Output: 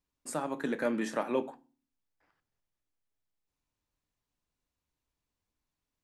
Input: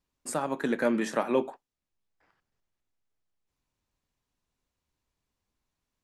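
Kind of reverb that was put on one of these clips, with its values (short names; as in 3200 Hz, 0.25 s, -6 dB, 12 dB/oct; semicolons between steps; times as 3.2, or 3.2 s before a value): FDN reverb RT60 0.37 s, low-frequency decay 1.6×, high-frequency decay 1×, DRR 13 dB; gain -4.5 dB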